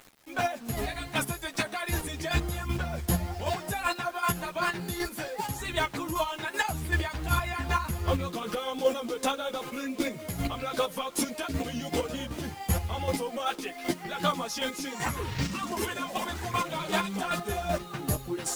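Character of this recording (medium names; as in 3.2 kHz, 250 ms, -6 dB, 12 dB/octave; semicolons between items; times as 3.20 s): a quantiser's noise floor 8-bit, dither none; chopped level 2.6 Hz, depth 60%, duty 20%; a shimmering, thickened sound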